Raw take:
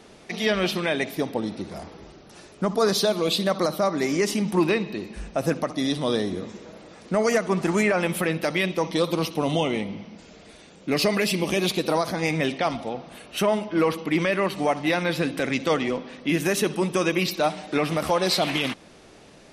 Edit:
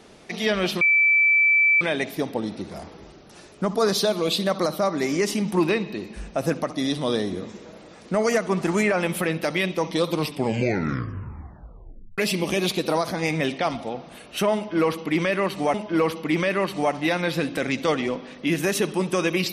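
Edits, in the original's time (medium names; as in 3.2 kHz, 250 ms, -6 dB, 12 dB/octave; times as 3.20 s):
0.81 s: add tone 2.32 kHz -14.5 dBFS 1.00 s
9.12 s: tape stop 2.06 s
13.56–14.74 s: loop, 2 plays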